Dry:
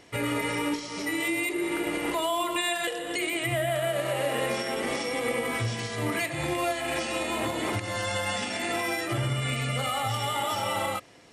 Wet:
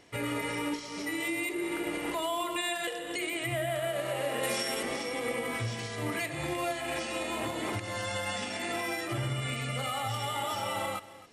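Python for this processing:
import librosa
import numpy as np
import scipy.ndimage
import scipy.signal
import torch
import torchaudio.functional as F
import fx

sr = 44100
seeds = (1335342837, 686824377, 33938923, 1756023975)

y = fx.high_shelf(x, sr, hz=3600.0, db=11.0, at=(4.43, 4.83))
y = y + 10.0 ** (-17.5 / 20.0) * np.pad(y, (int(268 * sr / 1000.0), 0))[:len(y)]
y = F.gain(torch.from_numpy(y), -4.5).numpy()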